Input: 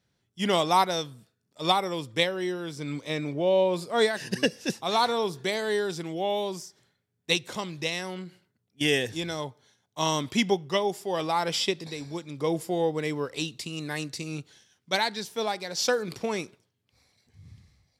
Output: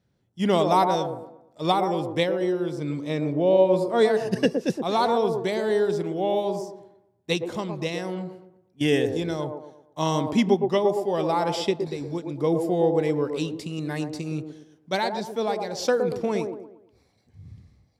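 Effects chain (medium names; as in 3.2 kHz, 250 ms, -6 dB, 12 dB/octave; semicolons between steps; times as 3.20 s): tilt shelf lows +5.5 dB, about 1.1 kHz; feedback echo behind a band-pass 116 ms, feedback 38%, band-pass 500 Hz, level -4 dB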